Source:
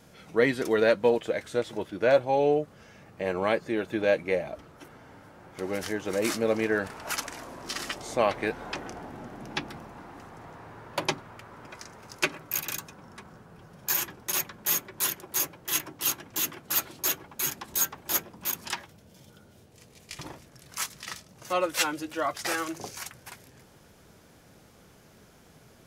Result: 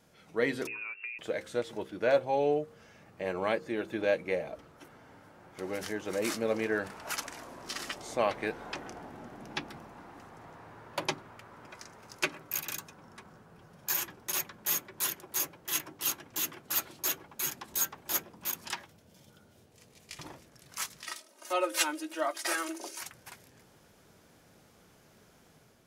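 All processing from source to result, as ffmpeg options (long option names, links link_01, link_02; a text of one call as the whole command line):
ffmpeg -i in.wav -filter_complex "[0:a]asettb=1/sr,asplit=3[link_01][link_02][link_03];[link_01]atrim=end=0.674[link_04];[link_02]atrim=start=0.67:end=1.19,asetpts=PTS-STARTPTS,afade=type=in:duration=0.004:curve=qsin,afade=type=out:start_time=0.516:duration=0.004:curve=qsin,aemphasis=mode=reproduction:type=75kf,acompressor=threshold=-33dB:ratio=8:attack=3.2:release=140:knee=1:detection=peak,lowpass=frequency=2500:width_type=q:width=0.5098,lowpass=frequency=2500:width_type=q:width=0.6013,lowpass=frequency=2500:width_type=q:width=0.9,lowpass=frequency=2500:width_type=q:width=2.563,afreqshift=-2900[link_05];[link_03]atrim=start=1.186[link_06];[link_04][link_05]acrossfade=duration=0.004:curve1=hsin:curve2=qsin[link_07];[link_07][link_06]acrossfade=duration=0.004:curve1=qsin:curve2=hsin,asettb=1/sr,asplit=3[link_08][link_09][link_10];[link_08]atrim=end=21.054[link_11];[link_09]atrim=start=21.05:end=23.01,asetpts=PTS-STARTPTS,afade=type=in:duration=0.004:curve=qsin,afade=type=out:start_time=1.956:duration=0.004:curve=qsin,highpass=frequency=300:width=0.5412,highpass=frequency=300:width=1.3066,equalizer=frequency=9600:width_type=o:width=0.24:gain=7,aecho=1:1:3.2:0.72,atrim=end_sample=86436[link_12];[link_10]atrim=start=23.006[link_13];[link_11][link_12]acrossfade=duration=0.004:curve1=hsin:curve2=qsin[link_14];[link_14][link_13]acrossfade=duration=0.004:curve1=qsin:curve2=hsin,dynaudnorm=framelen=160:gausssize=5:maxgain=4dB,lowshelf=frequency=110:gain=-4,bandreject=frequency=66.15:width_type=h:width=4,bandreject=frequency=132.3:width_type=h:width=4,bandreject=frequency=198.45:width_type=h:width=4,bandreject=frequency=264.6:width_type=h:width=4,bandreject=frequency=330.75:width_type=h:width=4,bandreject=frequency=396.9:width_type=h:width=4,bandreject=frequency=463.05:width_type=h:width=4,bandreject=frequency=529.2:width_type=h:width=4,volume=-8dB" out.wav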